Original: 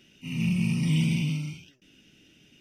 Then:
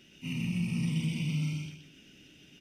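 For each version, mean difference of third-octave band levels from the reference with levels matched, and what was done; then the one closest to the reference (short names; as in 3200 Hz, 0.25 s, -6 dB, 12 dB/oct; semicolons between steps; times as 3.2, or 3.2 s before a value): 4.0 dB: limiter -27 dBFS, peak gain reduction 11 dB; feedback echo 0.124 s, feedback 29%, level -3.5 dB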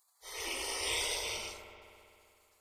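14.5 dB: spectral gate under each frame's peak -30 dB weak; on a send: dark delay 65 ms, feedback 84%, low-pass 1500 Hz, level -7 dB; on the sum: gain +8 dB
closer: first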